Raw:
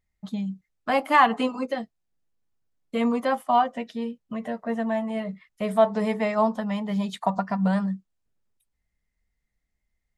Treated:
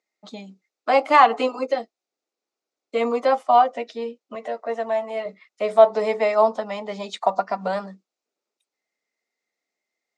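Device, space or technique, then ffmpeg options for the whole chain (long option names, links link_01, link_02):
phone speaker on a table: -filter_complex "[0:a]highpass=frequency=340:width=0.5412,highpass=frequency=340:width=1.3066,equalizer=frequency=990:width_type=q:width=4:gain=-5,equalizer=frequency=1700:width_type=q:width=4:gain=-9,equalizer=frequency=3100:width_type=q:width=4:gain=-6,lowpass=frequency=6900:width=0.5412,lowpass=frequency=6900:width=1.3066,asettb=1/sr,asplit=3[link_01][link_02][link_03];[link_01]atrim=end=4.354[link_04];[link_02]atrim=start=4.35:end=5.26,asetpts=PTS-STARTPTS,afade=type=in:duration=0.004:curve=qsin,afade=type=out:start_time=0.906:duration=0.004:curve=qsin,highpass=frequency=370:poles=1[link_05];[link_03]atrim=start=5.256[link_06];[link_04][link_05]acrossfade=duration=0.004:curve1=hsin:curve2=qsin[link_07];[link_07][link_06]acrossfade=duration=0.004:curve1=qsin:curve2=hsin,volume=7dB"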